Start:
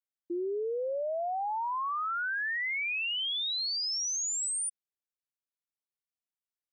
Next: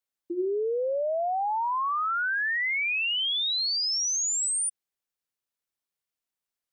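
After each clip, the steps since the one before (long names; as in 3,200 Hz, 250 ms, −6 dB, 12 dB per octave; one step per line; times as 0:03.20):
mains-hum notches 50/100/150/200/250/300/350 Hz
level +5 dB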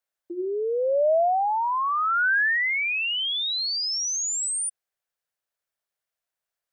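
graphic EQ with 15 bands 250 Hz −9 dB, 630 Hz +8 dB, 1,600 Hz +6 dB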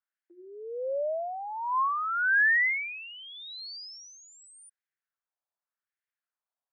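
auto-filter band-pass sine 0.87 Hz 840–1,900 Hz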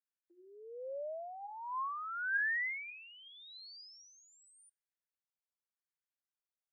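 tuned comb filter 800 Hz, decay 0.37 s, mix 60%
level −3.5 dB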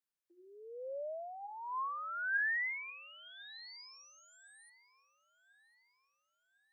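feedback echo with a high-pass in the loop 1,051 ms, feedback 46%, high-pass 320 Hz, level −22.5 dB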